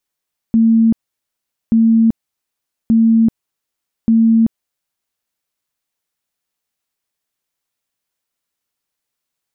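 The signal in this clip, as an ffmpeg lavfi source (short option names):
-f lavfi -i "aevalsrc='0.422*sin(2*PI*226*mod(t,1.18))*lt(mod(t,1.18),87/226)':d=4.72:s=44100"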